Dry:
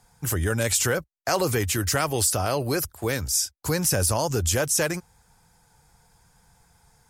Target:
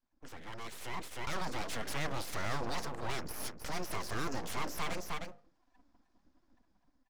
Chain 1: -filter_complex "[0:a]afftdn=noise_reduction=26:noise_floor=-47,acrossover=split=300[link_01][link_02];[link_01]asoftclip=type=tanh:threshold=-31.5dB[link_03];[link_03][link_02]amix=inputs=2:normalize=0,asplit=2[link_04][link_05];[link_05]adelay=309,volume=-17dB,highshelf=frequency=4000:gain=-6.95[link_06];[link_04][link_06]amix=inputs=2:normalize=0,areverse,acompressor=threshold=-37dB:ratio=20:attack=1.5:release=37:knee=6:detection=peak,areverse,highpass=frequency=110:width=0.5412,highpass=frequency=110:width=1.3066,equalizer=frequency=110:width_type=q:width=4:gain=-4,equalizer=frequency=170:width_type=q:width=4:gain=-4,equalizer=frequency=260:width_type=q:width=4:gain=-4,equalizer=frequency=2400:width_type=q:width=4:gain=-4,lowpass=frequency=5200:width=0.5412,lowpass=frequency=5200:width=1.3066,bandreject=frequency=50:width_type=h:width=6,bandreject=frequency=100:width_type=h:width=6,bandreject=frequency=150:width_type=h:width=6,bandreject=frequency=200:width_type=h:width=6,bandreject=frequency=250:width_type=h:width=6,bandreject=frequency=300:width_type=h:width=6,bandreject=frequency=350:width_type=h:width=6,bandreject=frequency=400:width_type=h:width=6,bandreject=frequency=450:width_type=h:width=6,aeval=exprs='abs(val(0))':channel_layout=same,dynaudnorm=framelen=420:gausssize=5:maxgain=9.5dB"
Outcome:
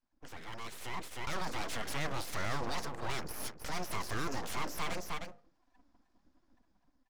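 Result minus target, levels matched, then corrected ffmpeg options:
soft clipping: distortion +10 dB
-filter_complex "[0:a]afftdn=noise_reduction=26:noise_floor=-47,acrossover=split=300[link_01][link_02];[link_01]asoftclip=type=tanh:threshold=-22dB[link_03];[link_03][link_02]amix=inputs=2:normalize=0,asplit=2[link_04][link_05];[link_05]adelay=309,volume=-17dB,highshelf=frequency=4000:gain=-6.95[link_06];[link_04][link_06]amix=inputs=2:normalize=0,areverse,acompressor=threshold=-37dB:ratio=20:attack=1.5:release=37:knee=6:detection=peak,areverse,highpass=frequency=110:width=0.5412,highpass=frequency=110:width=1.3066,equalizer=frequency=110:width_type=q:width=4:gain=-4,equalizer=frequency=170:width_type=q:width=4:gain=-4,equalizer=frequency=260:width_type=q:width=4:gain=-4,equalizer=frequency=2400:width_type=q:width=4:gain=-4,lowpass=frequency=5200:width=0.5412,lowpass=frequency=5200:width=1.3066,bandreject=frequency=50:width_type=h:width=6,bandreject=frequency=100:width_type=h:width=6,bandreject=frequency=150:width_type=h:width=6,bandreject=frequency=200:width_type=h:width=6,bandreject=frequency=250:width_type=h:width=6,bandreject=frequency=300:width_type=h:width=6,bandreject=frequency=350:width_type=h:width=6,bandreject=frequency=400:width_type=h:width=6,bandreject=frequency=450:width_type=h:width=6,aeval=exprs='abs(val(0))':channel_layout=same,dynaudnorm=framelen=420:gausssize=5:maxgain=9.5dB"

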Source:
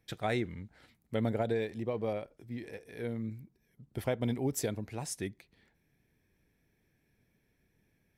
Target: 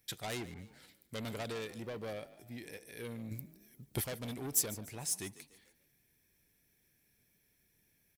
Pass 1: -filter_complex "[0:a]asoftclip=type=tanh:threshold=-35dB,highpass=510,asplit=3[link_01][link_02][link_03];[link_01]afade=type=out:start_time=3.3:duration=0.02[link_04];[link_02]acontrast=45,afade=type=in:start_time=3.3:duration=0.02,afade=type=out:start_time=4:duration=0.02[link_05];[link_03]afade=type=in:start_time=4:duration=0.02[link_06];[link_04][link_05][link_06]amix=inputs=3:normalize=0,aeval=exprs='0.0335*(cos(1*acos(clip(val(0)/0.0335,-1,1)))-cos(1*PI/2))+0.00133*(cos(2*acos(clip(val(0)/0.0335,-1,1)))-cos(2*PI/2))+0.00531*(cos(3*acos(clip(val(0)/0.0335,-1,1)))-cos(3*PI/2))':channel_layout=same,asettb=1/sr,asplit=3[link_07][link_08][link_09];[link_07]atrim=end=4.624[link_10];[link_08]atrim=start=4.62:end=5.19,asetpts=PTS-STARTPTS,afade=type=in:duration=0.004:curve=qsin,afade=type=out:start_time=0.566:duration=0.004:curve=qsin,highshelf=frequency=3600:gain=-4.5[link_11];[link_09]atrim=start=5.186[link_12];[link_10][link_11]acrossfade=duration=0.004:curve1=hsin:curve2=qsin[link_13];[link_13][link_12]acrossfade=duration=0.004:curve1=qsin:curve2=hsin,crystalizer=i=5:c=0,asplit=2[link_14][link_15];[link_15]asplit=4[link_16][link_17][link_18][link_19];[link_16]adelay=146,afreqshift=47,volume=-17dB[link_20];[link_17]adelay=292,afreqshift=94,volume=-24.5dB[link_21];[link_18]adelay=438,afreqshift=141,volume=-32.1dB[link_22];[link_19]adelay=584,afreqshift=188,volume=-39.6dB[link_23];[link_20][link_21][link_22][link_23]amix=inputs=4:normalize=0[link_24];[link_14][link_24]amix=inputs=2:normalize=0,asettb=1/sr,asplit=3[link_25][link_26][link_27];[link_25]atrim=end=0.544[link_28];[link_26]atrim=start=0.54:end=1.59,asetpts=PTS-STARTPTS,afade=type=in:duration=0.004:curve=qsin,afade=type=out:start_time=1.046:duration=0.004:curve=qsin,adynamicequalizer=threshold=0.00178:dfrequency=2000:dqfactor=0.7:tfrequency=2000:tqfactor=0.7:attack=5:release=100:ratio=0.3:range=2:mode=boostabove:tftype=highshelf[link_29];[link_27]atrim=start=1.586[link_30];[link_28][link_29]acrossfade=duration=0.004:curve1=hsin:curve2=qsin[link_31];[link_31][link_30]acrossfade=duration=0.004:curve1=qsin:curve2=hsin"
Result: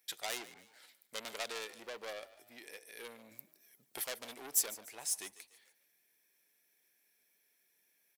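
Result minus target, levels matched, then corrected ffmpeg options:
500 Hz band −4.0 dB
-filter_complex "[0:a]asoftclip=type=tanh:threshold=-35dB,asplit=3[link_01][link_02][link_03];[link_01]afade=type=out:start_time=3.3:duration=0.02[link_04];[link_02]acontrast=45,afade=type=in:start_time=3.3:duration=0.02,afade=type=out:start_time=4:duration=0.02[link_05];[link_03]afade=type=in:start_time=4:duration=0.02[link_06];[link_04][link_05][link_06]amix=inputs=3:normalize=0,aeval=exprs='0.0335*(cos(1*acos(clip(val(0)/0.0335,-1,1)))-cos(1*PI/2))+0.00133*(cos(2*acos(clip(val(0)/0.0335,-1,1)))-cos(2*PI/2))+0.00531*(cos(3*acos(clip(val(0)/0.0335,-1,1)))-cos(3*PI/2))':channel_layout=same,asettb=1/sr,asplit=3[link_07][link_08][link_09];[link_07]atrim=end=4.624[link_10];[link_08]atrim=start=4.62:end=5.19,asetpts=PTS-STARTPTS,afade=type=in:duration=0.004:curve=qsin,afade=type=out:start_time=0.566:duration=0.004:curve=qsin,highshelf=frequency=3600:gain=-4.5[link_11];[link_09]atrim=start=5.186[link_12];[link_10][link_11]acrossfade=duration=0.004:curve1=hsin:curve2=qsin[link_13];[link_13][link_12]acrossfade=duration=0.004:curve1=qsin:curve2=hsin,crystalizer=i=5:c=0,asplit=2[link_14][link_15];[link_15]asplit=4[link_16][link_17][link_18][link_19];[link_16]adelay=146,afreqshift=47,volume=-17dB[link_20];[link_17]adelay=292,afreqshift=94,volume=-24.5dB[link_21];[link_18]adelay=438,afreqshift=141,volume=-32.1dB[link_22];[link_19]adelay=584,afreqshift=188,volume=-39.6dB[link_23];[link_20][link_21][link_22][link_23]amix=inputs=4:normalize=0[link_24];[link_14][link_24]amix=inputs=2:normalize=0,asettb=1/sr,asplit=3[link_25][link_26][link_27];[link_25]atrim=end=0.544[link_28];[link_26]atrim=start=0.54:end=1.59,asetpts=PTS-STARTPTS,afade=type=in:duration=0.004:curve=qsin,afade=type=out:start_time=1.046:duration=0.004:curve=qsin,adynamicequalizer=threshold=0.00178:dfrequency=2000:dqfactor=0.7:tfrequency=2000:tqfactor=0.7:attack=5:release=100:ratio=0.3:range=2:mode=boostabove:tftype=highshelf[link_29];[link_27]atrim=start=1.586[link_30];[link_28][link_29]acrossfade=duration=0.004:curve1=hsin:curve2=qsin[link_31];[link_31][link_30]acrossfade=duration=0.004:curve1=qsin:curve2=hsin"

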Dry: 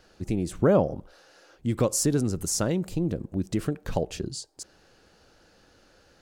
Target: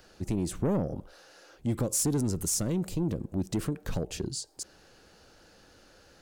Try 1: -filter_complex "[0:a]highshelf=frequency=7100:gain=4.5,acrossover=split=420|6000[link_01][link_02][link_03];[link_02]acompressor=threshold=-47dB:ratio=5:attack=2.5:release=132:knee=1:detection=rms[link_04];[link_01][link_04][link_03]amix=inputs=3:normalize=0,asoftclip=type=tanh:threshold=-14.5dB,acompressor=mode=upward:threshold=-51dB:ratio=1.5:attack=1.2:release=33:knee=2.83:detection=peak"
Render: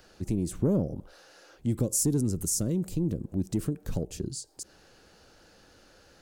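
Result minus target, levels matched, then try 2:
downward compressor: peak gain reduction +9 dB; soft clipping: distortion −10 dB
-filter_complex "[0:a]highshelf=frequency=7100:gain=4.5,acrossover=split=420|6000[link_01][link_02][link_03];[link_02]acompressor=threshold=-35.5dB:ratio=5:attack=2.5:release=132:knee=1:detection=rms[link_04];[link_01][link_04][link_03]amix=inputs=3:normalize=0,asoftclip=type=tanh:threshold=-21.5dB,acompressor=mode=upward:threshold=-51dB:ratio=1.5:attack=1.2:release=33:knee=2.83:detection=peak"

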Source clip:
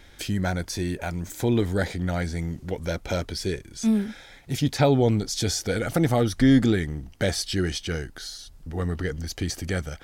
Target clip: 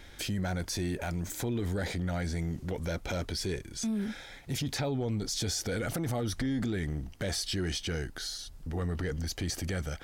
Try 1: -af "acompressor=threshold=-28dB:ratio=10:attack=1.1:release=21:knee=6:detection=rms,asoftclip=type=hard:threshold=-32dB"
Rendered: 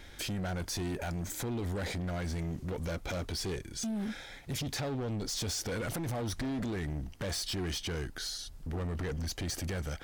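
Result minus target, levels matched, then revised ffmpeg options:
hard clipping: distortion +25 dB
-af "acompressor=threshold=-28dB:ratio=10:attack=1.1:release=21:knee=6:detection=rms,asoftclip=type=hard:threshold=-25dB"

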